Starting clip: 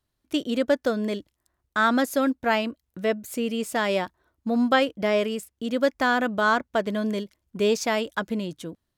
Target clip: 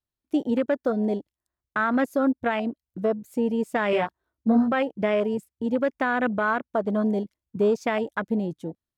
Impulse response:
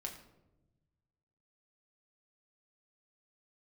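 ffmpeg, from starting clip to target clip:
-filter_complex "[0:a]afwtdn=0.0316,alimiter=limit=-17.5dB:level=0:latency=1:release=141,asettb=1/sr,asplit=3[link_01][link_02][link_03];[link_01]atrim=end=3.914[link_04];[link_02]atrim=start=3.91:end=4.73,asetpts=PTS-STARTPTS,afade=type=in:duration=0.004:curve=qsin,afade=type=out:start_time=0.816:duration=0.004:curve=qsin,asplit=2[link_05][link_06];[link_06]adelay=18,volume=-2.5dB[link_07];[link_05][link_07]amix=inputs=2:normalize=0,atrim=end_sample=36162[link_08];[link_03]atrim=start=4.726[link_09];[link_04][link_08]acrossfade=duration=0.004:curve1=hsin:curve2=qsin[link_10];[link_10][link_09]acrossfade=duration=0.004:curve1=qsin:curve2=hsin,volume=3dB"

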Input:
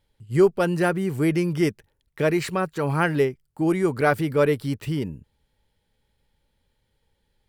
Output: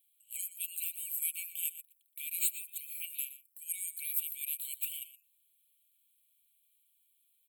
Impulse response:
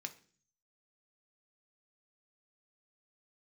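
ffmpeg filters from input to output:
-filter_complex "[0:a]highpass=600,highshelf=frequency=7900:width_type=q:width=3:gain=12.5,bandreject=frequency=7400:width=12,aecho=1:1:4.2:0.31,acrossover=split=3100[link_01][link_02];[link_01]acompressor=threshold=-37dB:ratio=6[link_03];[link_03][link_02]amix=inputs=2:normalize=0,aexciter=amount=1.5:drive=6.8:freq=6900,asplit=2[link_04][link_05];[link_05]aecho=0:1:120:0.188[link_06];[link_04][link_06]amix=inputs=2:normalize=0,afftfilt=real='re*eq(mod(floor(b*sr/1024/2200),2),1)':imag='im*eq(mod(floor(b*sr/1024/2200),2),1)':win_size=1024:overlap=0.75,volume=-3dB"

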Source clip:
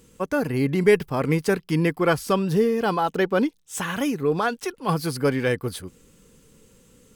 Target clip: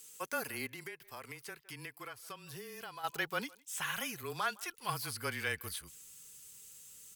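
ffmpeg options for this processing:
ffmpeg -i in.wav -filter_complex "[0:a]asubboost=boost=8.5:cutoff=120,acrossover=split=2900[link_01][link_02];[link_02]acompressor=threshold=-48dB:ratio=4:attack=1:release=60[link_03];[link_01][link_03]amix=inputs=2:normalize=0,aderivative,afreqshift=-22,asplit=2[link_04][link_05];[link_05]adelay=160,highpass=300,lowpass=3400,asoftclip=type=hard:threshold=-33dB,volume=-24dB[link_06];[link_04][link_06]amix=inputs=2:normalize=0,asplit=3[link_07][link_08][link_09];[link_07]afade=type=out:start_time=0.66:duration=0.02[link_10];[link_08]acompressor=threshold=-50dB:ratio=10,afade=type=in:start_time=0.66:duration=0.02,afade=type=out:start_time=3.03:duration=0.02[link_11];[link_09]afade=type=in:start_time=3.03:duration=0.02[link_12];[link_10][link_11][link_12]amix=inputs=3:normalize=0,volume=6.5dB" out.wav

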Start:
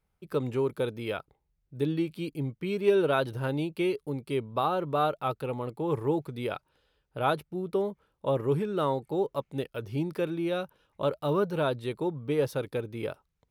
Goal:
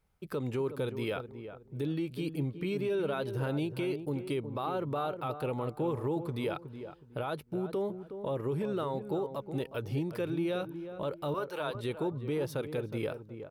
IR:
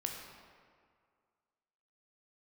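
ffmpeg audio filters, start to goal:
-filter_complex "[0:a]asettb=1/sr,asplit=3[link_01][link_02][link_03];[link_01]atrim=end=11.344[link_04];[link_02]atrim=start=11.34:end=11.75,asetpts=PTS-STARTPTS,afade=type=in:duration=0.004:curve=qsin,afade=type=out:start_time=0.406:duration=0.004:curve=qsin,highpass=620[link_05];[link_03]atrim=start=11.746[link_06];[link_04][link_05]acrossfade=duration=0.004:curve1=hsin:curve2=qsin[link_07];[link_07][link_06]acrossfade=duration=0.004:curve1=qsin:curve2=hsin,acompressor=threshold=-33dB:ratio=2.5,alimiter=level_in=4dB:limit=-24dB:level=0:latency=1:release=11,volume=-4dB,asplit=2[link_08][link_09];[link_09]adelay=367,lowpass=frequency=1100:poles=1,volume=-9dB,asplit=2[link_10][link_11];[link_11]adelay=367,lowpass=frequency=1100:poles=1,volume=0.3,asplit=2[link_12][link_13];[link_13]adelay=367,lowpass=frequency=1100:poles=1,volume=0.3[link_14];[link_08][link_10][link_12][link_14]amix=inputs=4:normalize=0,volume=2.5dB"

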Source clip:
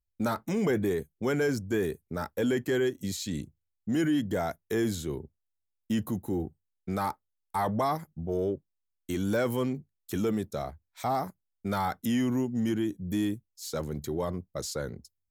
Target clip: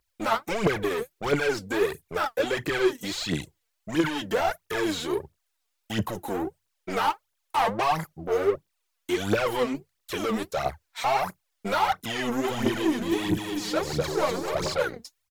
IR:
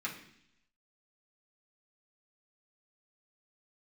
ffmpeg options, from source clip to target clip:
-filter_complex "[0:a]asplit=2[link_01][link_02];[link_02]highpass=frequency=720:poles=1,volume=24dB,asoftclip=type=tanh:threshold=-16.5dB[link_03];[link_01][link_03]amix=inputs=2:normalize=0,lowpass=frequency=7900:poles=1,volume=-6dB,equalizer=frequency=240:width=3.2:gain=-9.5,asplit=3[link_04][link_05][link_06];[link_04]afade=type=out:start_time=12.43:duration=0.02[link_07];[link_05]aecho=1:1:250|437.5|578.1|683.6|762.7:0.631|0.398|0.251|0.158|0.1,afade=type=in:start_time=12.43:duration=0.02,afade=type=out:start_time=14.82:duration=0.02[link_08];[link_06]afade=type=in:start_time=14.82:duration=0.02[link_09];[link_07][link_08][link_09]amix=inputs=3:normalize=0,aphaser=in_gain=1:out_gain=1:delay=4.6:decay=0.7:speed=1.5:type=triangular,acrossover=split=4300[link_10][link_11];[link_11]acompressor=threshold=-39dB:ratio=4:attack=1:release=60[link_12];[link_10][link_12]amix=inputs=2:normalize=0,volume=-3dB"

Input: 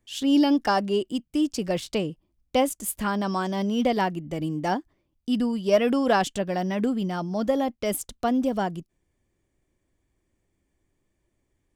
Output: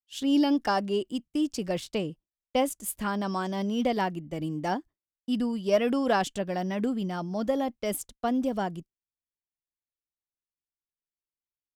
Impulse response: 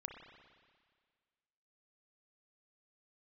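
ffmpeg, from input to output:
-af "agate=range=-33dB:threshold=-33dB:ratio=3:detection=peak,volume=-3.5dB"

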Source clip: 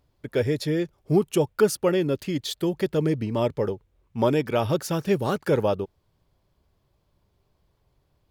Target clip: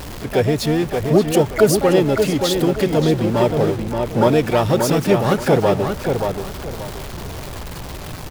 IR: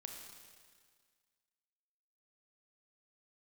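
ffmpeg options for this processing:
-filter_complex "[0:a]aeval=exprs='val(0)+0.5*0.0282*sgn(val(0))':channel_layout=same,asplit=2[link_01][link_02];[link_02]adelay=577,lowpass=frequency=3400:poles=1,volume=-5dB,asplit=2[link_03][link_04];[link_04]adelay=577,lowpass=frequency=3400:poles=1,volume=0.28,asplit=2[link_05][link_06];[link_06]adelay=577,lowpass=frequency=3400:poles=1,volume=0.28,asplit=2[link_07][link_08];[link_08]adelay=577,lowpass=frequency=3400:poles=1,volume=0.28[link_09];[link_01][link_03][link_05][link_07][link_09]amix=inputs=5:normalize=0,asplit=2[link_10][link_11];[link_11]asetrate=66075,aresample=44100,atempo=0.66742,volume=-9dB[link_12];[link_10][link_12]amix=inputs=2:normalize=0,volume=5dB"

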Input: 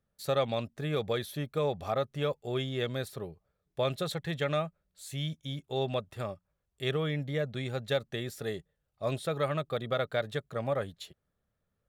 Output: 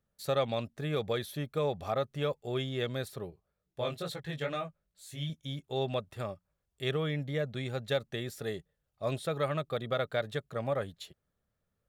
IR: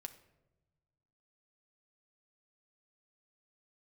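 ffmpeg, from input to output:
-filter_complex "[0:a]asettb=1/sr,asplit=3[link_01][link_02][link_03];[link_01]atrim=end=3.304[link_04];[link_02]atrim=start=3.3:end=5.3,asetpts=PTS-STARTPTS,afade=type=in:duration=0.004:curve=qsin,afade=type=out:start_time=1.996:duration=0.004:curve=qsin,flanger=delay=15.5:depth=5.2:speed=2.3[link_05];[link_03]atrim=start=5.296[link_06];[link_04][link_05]acrossfade=duration=0.004:curve1=hsin:curve2=qsin[link_07];[link_07][link_06]acrossfade=duration=0.004:curve1=qsin:curve2=hsin,volume=-1dB"

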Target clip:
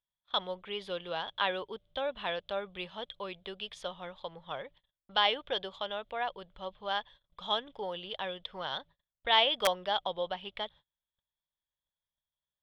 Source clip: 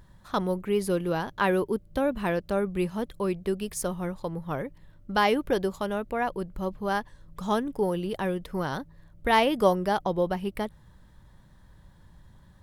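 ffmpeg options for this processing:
ffmpeg -i in.wav -filter_complex "[0:a]agate=range=-32dB:threshold=-45dB:ratio=16:detection=peak,lowpass=frequency=3400:width_type=q:width=11,acrossover=split=1600[link_01][link_02];[link_01]aeval=exprs='(mod(3.35*val(0)+1,2)-1)/3.35':channel_layout=same[link_03];[link_03][link_02]amix=inputs=2:normalize=0,lowshelf=frequency=430:width_type=q:width=1.5:gain=-10.5,volume=-8dB" out.wav

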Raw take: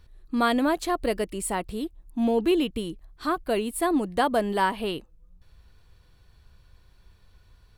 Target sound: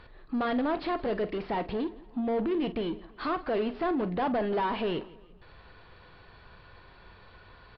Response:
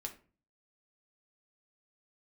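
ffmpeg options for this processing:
-filter_complex "[0:a]asoftclip=type=tanh:threshold=-26dB,asplit=2[link_01][link_02];[link_02]highpass=frequency=720:poles=1,volume=22dB,asoftclip=type=tanh:threshold=-26dB[link_03];[link_01][link_03]amix=inputs=2:normalize=0,lowpass=frequency=2500:poles=1,volume=-6dB,aresample=11025,aresample=44100,aemphasis=mode=reproduction:type=75kf,asplit=2[link_04][link_05];[link_05]adelay=45,volume=-13dB[link_06];[link_04][link_06]amix=inputs=2:normalize=0,aecho=1:1:168|336|504:0.0891|0.0392|0.0173,asplit=2[link_07][link_08];[1:a]atrim=start_sample=2205[link_09];[link_08][link_09]afir=irnorm=-1:irlink=0,volume=-9.5dB[link_10];[link_07][link_10]amix=inputs=2:normalize=0"

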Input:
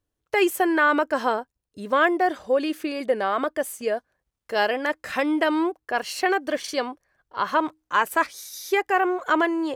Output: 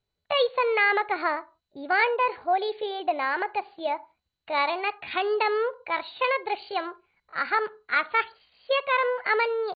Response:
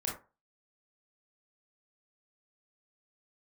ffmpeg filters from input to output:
-filter_complex "[0:a]asetrate=60591,aresample=44100,atempo=0.727827,asplit=2[link_01][link_02];[1:a]atrim=start_sample=2205,afade=type=out:start_time=0.21:duration=0.01,atrim=end_sample=9702,asetrate=36603,aresample=44100[link_03];[link_02][link_03]afir=irnorm=-1:irlink=0,volume=-20dB[link_04];[link_01][link_04]amix=inputs=2:normalize=0,volume=-3.5dB" -ar 16000 -c:a mp2 -b:a 48k

